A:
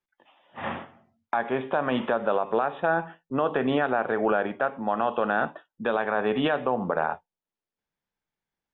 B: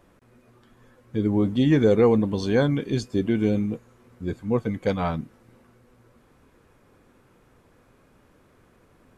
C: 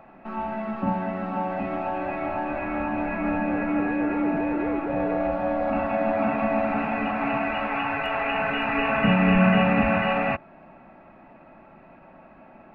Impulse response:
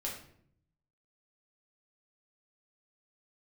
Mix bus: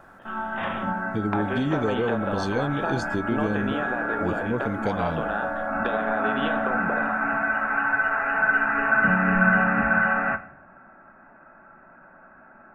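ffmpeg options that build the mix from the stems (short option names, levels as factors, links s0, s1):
-filter_complex "[0:a]highshelf=f=3500:g=9,acompressor=threshold=0.0282:ratio=6,volume=1.26,asplit=2[s0][s1];[s1]volume=0.355[s2];[1:a]acompressor=threshold=0.0631:ratio=4,volume=1.06,asplit=2[s3][s4];[2:a]lowpass=f=1500:t=q:w=9.7,volume=0.376,asplit=2[s5][s6];[s6]volume=0.422[s7];[s4]apad=whole_len=561993[s8];[s5][s8]sidechaincompress=threshold=0.0251:ratio=8:attack=16:release=124[s9];[3:a]atrim=start_sample=2205[s10];[s2][s7]amix=inputs=2:normalize=0[s11];[s11][s10]afir=irnorm=-1:irlink=0[s12];[s0][s3][s9][s12]amix=inputs=4:normalize=0"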